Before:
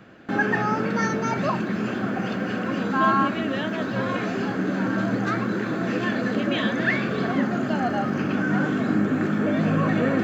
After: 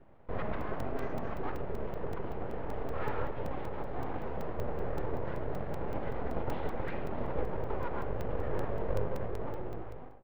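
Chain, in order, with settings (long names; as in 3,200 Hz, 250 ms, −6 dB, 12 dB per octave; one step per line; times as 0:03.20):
fade-out on the ending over 1.29 s
high-pass filter 50 Hz 6 dB per octave
flat-topped bell 2,300 Hz −12 dB 2.8 octaves
full-wave rectification
high-frequency loss of the air 390 metres
far-end echo of a speakerphone 110 ms, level −14 dB
regular buffer underruns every 0.19 s, samples 128, zero, from 0:00.61
level −6 dB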